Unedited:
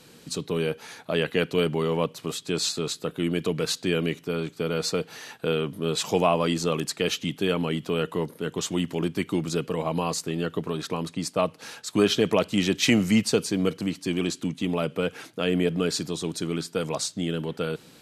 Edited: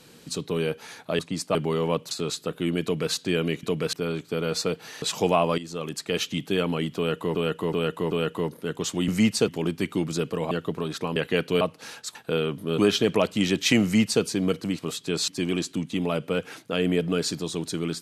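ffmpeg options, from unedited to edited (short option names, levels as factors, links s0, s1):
-filter_complex "[0:a]asplit=20[s0][s1][s2][s3][s4][s5][s6][s7][s8][s9][s10][s11][s12][s13][s14][s15][s16][s17][s18][s19];[s0]atrim=end=1.192[s20];[s1]atrim=start=11.048:end=11.412[s21];[s2]atrim=start=1.638:end=2.202[s22];[s3]atrim=start=2.688:end=4.212[s23];[s4]atrim=start=3.408:end=3.712[s24];[s5]atrim=start=4.208:end=5.302[s25];[s6]atrim=start=5.928:end=6.49,asetpts=PTS-STARTPTS,afade=t=out:st=0.558:d=0.004:c=hsin:silence=0.188365[s26];[s7]atrim=start=6.49:end=8.262,asetpts=PTS-STARTPTS,afade=t=in:d=0.66:silence=0.188365[s27];[s8]atrim=start=7.878:end=8.262[s28];[s9]atrim=start=7.878:end=8.262[s29];[s10]atrim=start=7.878:end=8.852[s30];[s11]atrim=start=12.998:end=13.402[s31];[s12]atrim=start=8.848:end=9.882[s32];[s13]atrim=start=10.398:end=11.052[s33];[s14]atrim=start=1.188:end=1.642[s34];[s15]atrim=start=11.408:end=11.952[s35];[s16]atrim=start=5.298:end=5.932[s36];[s17]atrim=start=11.948:end=13.962[s37];[s18]atrim=start=2.198:end=2.692[s38];[s19]atrim=start=13.958[s39];[s20][s21]acrossfade=d=0.004:c1=hsin:c2=hsin[s40];[s40][s22]acrossfade=d=0.004:c1=hsin:c2=hsin[s41];[s41][s23]acrossfade=d=0.004:c1=hsin:c2=hsin[s42];[s42][s24]acrossfade=d=0.004:c1=hsin:c2=hsin[s43];[s43][s25]acrossfade=d=0.004:c1=hsin:c2=hsin[s44];[s26][s27]concat=n=2:v=0:a=1[s45];[s44][s45]acrossfade=d=0.004:c1=hsin:c2=hsin[s46];[s46][s28]acrossfade=d=0.004:c1=hsin:c2=hsin[s47];[s47][s29]acrossfade=d=0.004:c1=hsin:c2=hsin[s48];[s48][s30]acrossfade=d=0.004:c1=hsin:c2=hsin[s49];[s49][s31]acrossfade=d=0.004:c1=hsin:c2=hsin[s50];[s50][s32]acrossfade=d=0.004:c1=hsin:c2=hsin[s51];[s51][s33]acrossfade=d=0.004:c1=hsin:c2=hsin[s52];[s52][s34]acrossfade=d=0.004:c1=hsin:c2=hsin[s53];[s53][s35]acrossfade=d=0.004:c1=hsin:c2=hsin[s54];[s54][s36]acrossfade=d=0.004:c1=hsin:c2=hsin[s55];[s55][s37]acrossfade=d=0.004:c1=hsin:c2=hsin[s56];[s56][s38]acrossfade=d=0.004:c1=hsin:c2=hsin[s57];[s57][s39]acrossfade=d=0.004:c1=hsin:c2=hsin"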